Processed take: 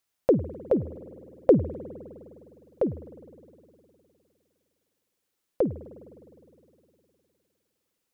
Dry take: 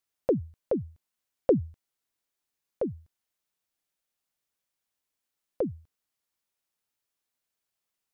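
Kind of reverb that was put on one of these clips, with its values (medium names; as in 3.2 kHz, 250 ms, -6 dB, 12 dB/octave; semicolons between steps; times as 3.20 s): spring tank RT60 2.9 s, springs 51 ms, chirp 75 ms, DRR 14.5 dB; trim +4.5 dB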